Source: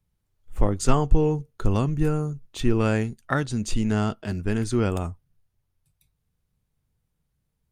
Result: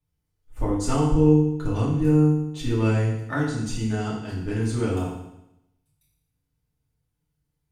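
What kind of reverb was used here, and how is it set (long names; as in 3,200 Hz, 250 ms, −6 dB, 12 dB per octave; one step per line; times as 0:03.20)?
feedback delay network reverb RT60 0.84 s, low-frequency decay 1.1×, high-frequency decay 1×, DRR −7 dB
level −9.5 dB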